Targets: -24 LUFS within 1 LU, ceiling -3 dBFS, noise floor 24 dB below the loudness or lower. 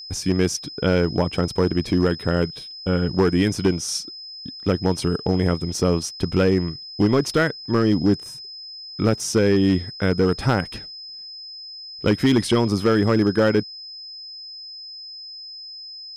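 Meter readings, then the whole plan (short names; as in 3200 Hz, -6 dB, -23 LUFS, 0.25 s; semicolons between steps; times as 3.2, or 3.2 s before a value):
clipped 1.0%; flat tops at -11.0 dBFS; steady tone 5100 Hz; tone level -35 dBFS; loudness -21.0 LUFS; peak -11.0 dBFS; loudness target -24.0 LUFS
-> clip repair -11 dBFS; notch 5100 Hz, Q 30; gain -3 dB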